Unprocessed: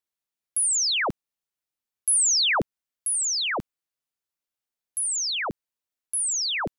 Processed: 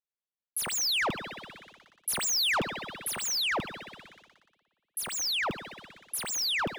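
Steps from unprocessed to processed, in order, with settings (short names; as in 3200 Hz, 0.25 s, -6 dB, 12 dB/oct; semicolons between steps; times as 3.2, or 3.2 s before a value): median filter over 5 samples; spring tank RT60 2.3 s, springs 57 ms, chirp 80 ms, DRR 11 dB; sample leveller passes 2; gain -7 dB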